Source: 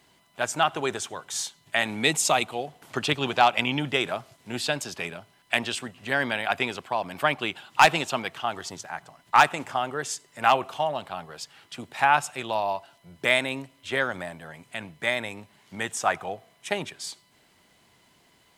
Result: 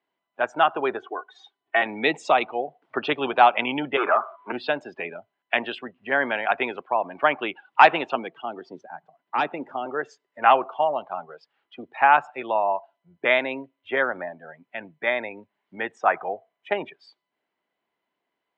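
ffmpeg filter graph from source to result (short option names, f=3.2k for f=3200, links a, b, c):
-filter_complex "[0:a]asettb=1/sr,asplit=3[a][b][c];[a]atrim=end=0.994[d];[b]atrim=start=0.99:end=1.82,asetpts=PTS-STARTPTS,afade=t=in:d=0.004:c=qsin,afade=t=out:st=0.826:d=0.004:c=qsin,highpass=140,equalizer=f=11k:t=o:w=2.6:g=-10.5,aecho=1:1:2.7:0.86,atrim=end_sample=36603[e];[c]atrim=start=1.816[f];[d][e]acrossfade=d=0.004:c1=hsin:c2=qsin[g];[g][f]acrossfade=d=0.004:c1=qsin:c2=hsin,asettb=1/sr,asplit=3[h][i][j];[h]atrim=end=3.974[k];[i]atrim=start=3.97:end=4.52,asetpts=PTS-STARTPTS,afade=t=in:d=0.004:c=qsin,afade=t=out:st=0.546:d=0.004:c=qsin,acompressor=threshold=-33dB:ratio=1.5:attack=3.2:release=140:knee=1:detection=peak,aeval=exprs='0.2*sin(PI/2*3.98*val(0)/0.2)':c=same,highpass=490,equalizer=f=520:t=q:w=4:g=-7,equalizer=f=740:t=q:w=4:g=-4,equalizer=f=1.2k:t=q:w=4:g=8,equalizer=f=1.9k:t=q:w=4:g=-8,equalizer=f=2.7k:t=q:w=4:g=-7,lowpass=f=2.8k:w=0.5412,lowpass=f=2.8k:w=1.3066[l];[j]atrim=start=4.516[m];[k][l]acrossfade=d=0.004:c1=hsin:c2=qsin[n];[n][m]acrossfade=d=0.004:c1=qsin:c2=hsin,asettb=1/sr,asplit=3[o][p][q];[o]atrim=end=8.154[r];[p]atrim=start=8.15:end=9.86,asetpts=PTS-STARTPTS,afade=t=in:d=0.004:c=qsin,afade=t=out:st=1.706:d=0.004:c=qsin,lowshelf=f=390:g=4.5,acrossover=split=470|3000[s][t][u];[t]acompressor=threshold=-51dB:ratio=1.5:attack=3.2:release=140:knee=2.83:detection=peak[v];[s][v][u]amix=inputs=3:normalize=0,highpass=150[w];[q]atrim=start=9.856[x];[r][w]acrossfade=d=0.004:c1=hsin:c2=qsin[y];[y][x]acrossfade=d=0.004:c1=qsin:c2=hsin,aemphasis=mode=reproduction:type=75fm,afftdn=nr=21:nf=-38,acrossover=split=250 4100:gain=0.0891 1 0.141[z][aa][ab];[z][aa][ab]amix=inputs=3:normalize=0,volume=4dB"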